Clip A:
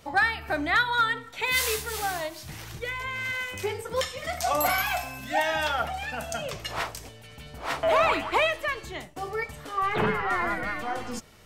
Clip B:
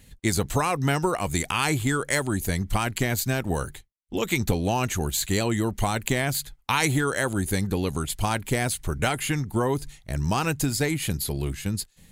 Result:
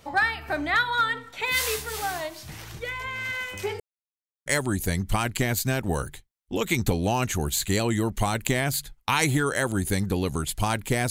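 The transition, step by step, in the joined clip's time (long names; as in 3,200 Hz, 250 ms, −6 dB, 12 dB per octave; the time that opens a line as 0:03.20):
clip A
0:03.80–0:04.46: silence
0:04.46: continue with clip B from 0:02.07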